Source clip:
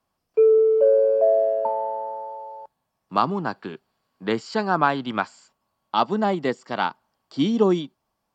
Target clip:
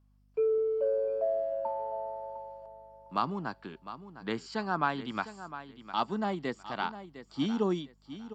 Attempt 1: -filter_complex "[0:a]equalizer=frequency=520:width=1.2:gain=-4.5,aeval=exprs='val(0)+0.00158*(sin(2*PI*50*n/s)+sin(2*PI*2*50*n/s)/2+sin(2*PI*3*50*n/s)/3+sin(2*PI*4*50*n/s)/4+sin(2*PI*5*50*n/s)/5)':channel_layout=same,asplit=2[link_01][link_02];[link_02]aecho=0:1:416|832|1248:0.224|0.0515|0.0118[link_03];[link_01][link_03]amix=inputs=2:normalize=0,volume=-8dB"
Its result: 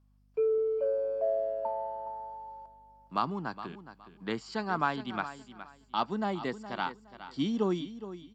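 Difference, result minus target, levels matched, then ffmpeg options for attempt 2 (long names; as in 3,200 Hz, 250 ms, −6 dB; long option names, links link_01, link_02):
echo 290 ms early
-filter_complex "[0:a]equalizer=frequency=520:width=1.2:gain=-4.5,aeval=exprs='val(0)+0.00158*(sin(2*PI*50*n/s)+sin(2*PI*2*50*n/s)/2+sin(2*PI*3*50*n/s)/3+sin(2*PI*4*50*n/s)/4+sin(2*PI*5*50*n/s)/5)':channel_layout=same,asplit=2[link_01][link_02];[link_02]aecho=0:1:706|1412|2118:0.224|0.0515|0.0118[link_03];[link_01][link_03]amix=inputs=2:normalize=0,volume=-8dB"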